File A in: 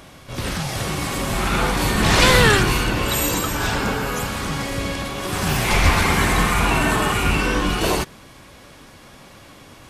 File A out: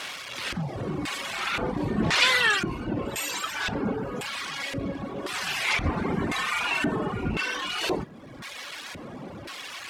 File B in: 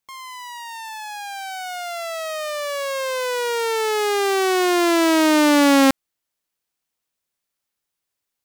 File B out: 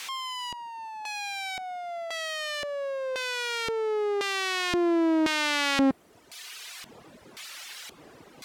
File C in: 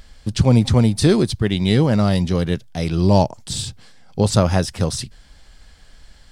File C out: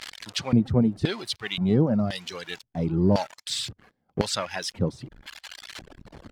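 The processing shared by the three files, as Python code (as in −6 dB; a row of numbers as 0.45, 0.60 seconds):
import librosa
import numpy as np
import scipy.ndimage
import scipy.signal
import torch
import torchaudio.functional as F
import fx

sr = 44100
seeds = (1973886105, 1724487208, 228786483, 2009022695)

y = x + 0.5 * 10.0 ** (-23.0 / 20.0) * np.sign(x)
y = fx.dereverb_blind(y, sr, rt60_s=1.5)
y = fx.filter_lfo_bandpass(y, sr, shape='square', hz=0.95, low_hz=280.0, high_hz=2700.0, q=0.78)
y = F.gain(torch.from_numpy(y), -2.0).numpy()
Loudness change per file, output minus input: −8.0, −9.0, −8.0 LU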